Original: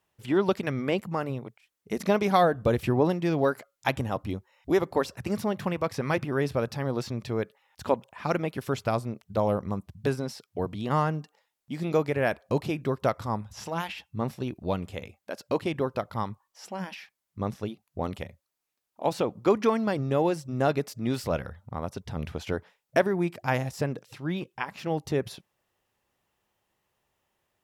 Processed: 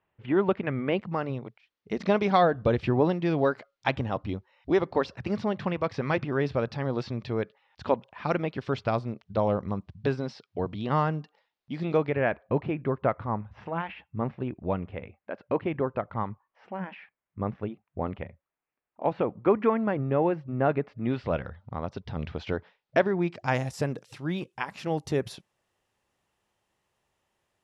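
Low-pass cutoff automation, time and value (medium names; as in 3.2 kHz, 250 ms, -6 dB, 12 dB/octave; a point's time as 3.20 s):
low-pass 24 dB/octave
0.77 s 2.7 kHz
1.21 s 4.6 kHz
11.80 s 4.6 kHz
12.39 s 2.4 kHz
20.89 s 2.4 kHz
21.63 s 4.5 kHz
23.21 s 4.5 kHz
23.71 s 11 kHz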